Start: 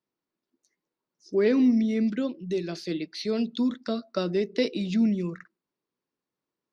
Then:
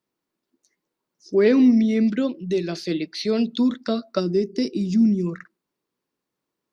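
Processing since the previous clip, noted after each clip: time-frequency box 4.20–5.27 s, 430–4600 Hz -12 dB; trim +5.5 dB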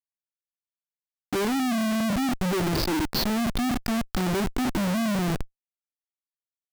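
FFT filter 110 Hz 0 dB, 270 Hz +8 dB, 410 Hz -1 dB, 640 Hz -27 dB, 930 Hz -22 dB, 1.6 kHz +1 dB, 2.4 kHz -17 dB, 5.1 kHz +8 dB, 8 kHz -26 dB; Schmitt trigger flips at -29 dBFS; trim -7.5 dB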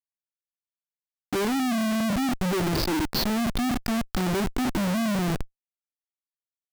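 no audible change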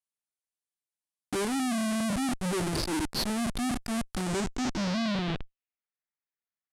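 peak limiter -25 dBFS, peak gain reduction 6.5 dB; low-pass sweep 9.8 kHz -> 1.9 kHz, 4.18–5.97 s; trim -3 dB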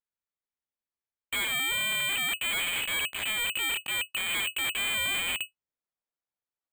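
frequency inversion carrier 2.6 kHz; careless resampling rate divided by 8×, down none, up hold

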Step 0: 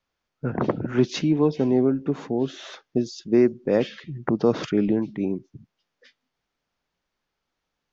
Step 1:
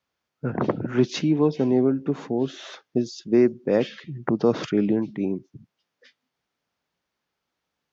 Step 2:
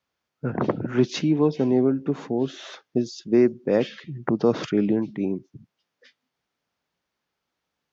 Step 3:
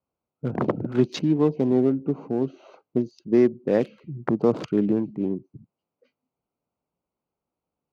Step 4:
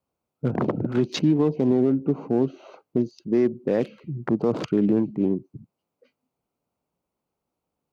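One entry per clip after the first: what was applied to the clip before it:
high-pass 77 Hz
no audible change
local Wiener filter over 25 samples
peak limiter -15.5 dBFS, peak gain reduction 7.5 dB; trim +3.5 dB

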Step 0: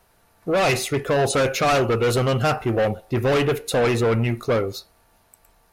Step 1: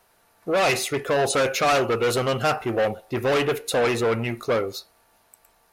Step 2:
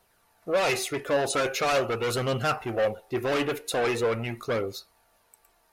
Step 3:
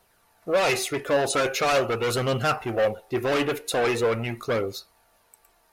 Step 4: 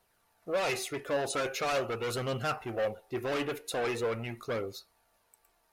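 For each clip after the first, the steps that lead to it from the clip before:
bass shelf 190 Hz -11.5 dB
flange 0.43 Hz, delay 0.2 ms, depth 3.4 ms, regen +56%
short-mantissa float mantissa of 6-bit; trim +2.5 dB
crackle 110 per s -56 dBFS; trim -8.5 dB

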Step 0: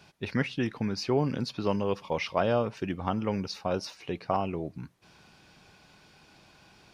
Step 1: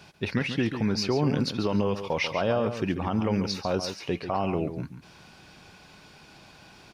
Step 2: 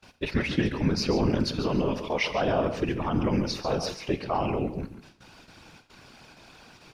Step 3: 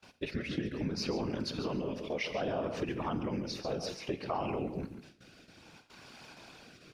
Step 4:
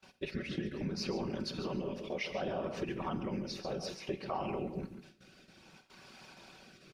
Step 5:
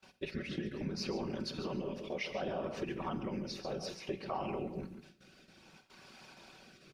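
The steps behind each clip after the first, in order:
peak limiter -21 dBFS, peak gain reduction 8.5 dB; echo from a far wall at 24 m, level -9 dB; trim +5.5 dB
gate with hold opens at -41 dBFS; whisper effect; Schroeder reverb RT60 0.83 s, combs from 26 ms, DRR 14 dB
rotary cabinet horn 0.6 Hz; compression 4:1, threshold -31 dBFS, peak gain reduction 10.5 dB; bass shelf 75 Hz -11 dB
comb 5.3 ms, depth 40%; trim -3 dB
hum notches 60/120/180 Hz; trim -1 dB

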